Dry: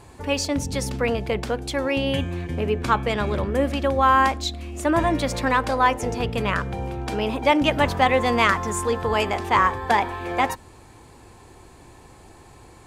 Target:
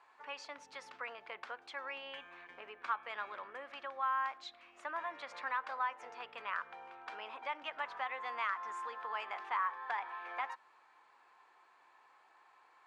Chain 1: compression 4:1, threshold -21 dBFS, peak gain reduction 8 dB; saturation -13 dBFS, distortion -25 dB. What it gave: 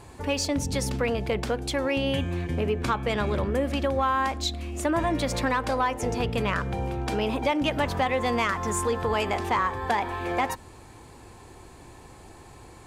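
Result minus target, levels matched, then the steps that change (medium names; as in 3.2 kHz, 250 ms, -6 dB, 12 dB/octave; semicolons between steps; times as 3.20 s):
2 kHz band -4.0 dB
add after compression: ladder band-pass 1.5 kHz, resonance 30%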